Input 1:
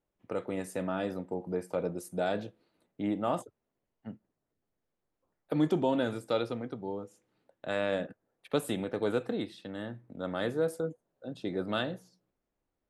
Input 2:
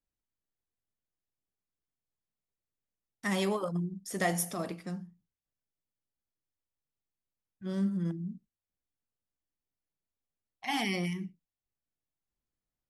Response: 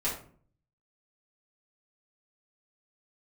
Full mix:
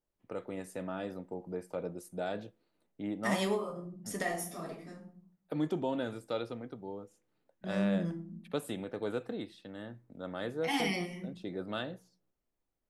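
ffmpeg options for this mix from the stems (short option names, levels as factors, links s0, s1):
-filter_complex "[0:a]volume=0.531,asplit=2[s0][s1];[1:a]volume=0.631,asplit=2[s2][s3];[s3]volume=0.398[s4];[s1]apad=whole_len=568863[s5];[s2][s5]sidechaingate=range=0.0224:threshold=0.00141:ratio=16:detection=peak[s6];[2:a]atrim=start_sample=2205[s7];[s4][s7]afir=irnorm=-1:irlink=0[s8];[s0][s6][s8]amix=inputs=3:normalize=0"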